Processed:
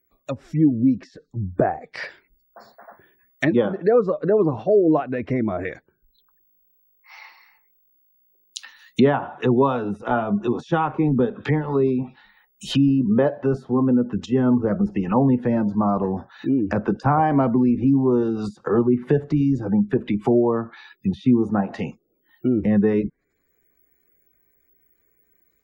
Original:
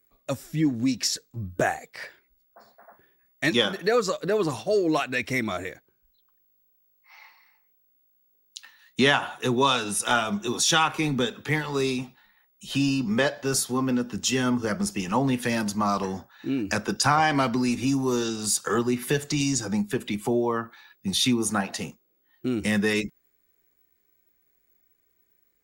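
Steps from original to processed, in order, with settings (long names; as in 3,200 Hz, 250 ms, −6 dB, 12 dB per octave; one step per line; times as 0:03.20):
gate on every frequency bin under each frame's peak −30 dB strong
treble cut that deepens with the level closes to 740 Hz, closed at −24 dBFS
automatic gain control gain up to 7 dB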